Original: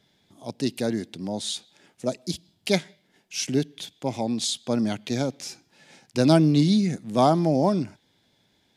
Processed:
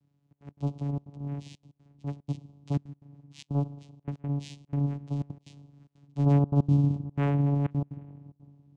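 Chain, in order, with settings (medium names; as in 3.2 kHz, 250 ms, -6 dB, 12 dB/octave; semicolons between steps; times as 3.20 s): high-order bell 2.3 kHz -9.5 dB; static phaser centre 1.3 kHz, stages 4; simulated room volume 1900 m³, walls mixed, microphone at 0.33 m; vocoder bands 4, saw 142 Hz; trance gate "xxxx.x.xxxxx.xx" 184 bpm -24 dB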